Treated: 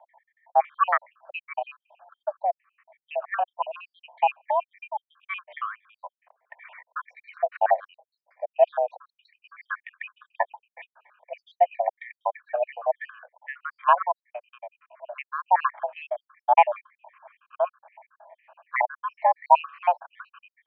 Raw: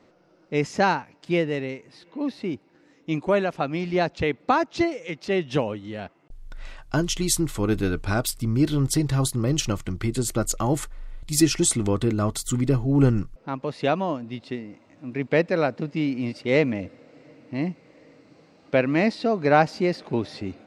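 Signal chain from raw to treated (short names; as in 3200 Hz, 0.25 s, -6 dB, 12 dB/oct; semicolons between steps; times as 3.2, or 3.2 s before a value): random spectral dropouts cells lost 76%; mistuned SSB +360 Hz 270–2000 Hz; gain +6.5 dB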